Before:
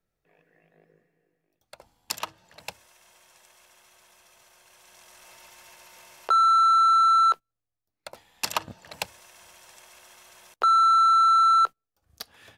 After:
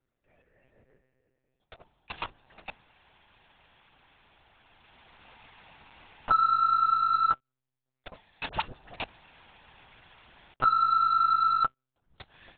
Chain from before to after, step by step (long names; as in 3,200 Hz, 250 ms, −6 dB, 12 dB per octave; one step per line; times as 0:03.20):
one-pitch LPC vocoder at 8 kHz 130 Hz
0:08.49–0:08.96: all-pass dispersion highs, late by 41 ms, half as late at 850 Hz
level −1.5 dB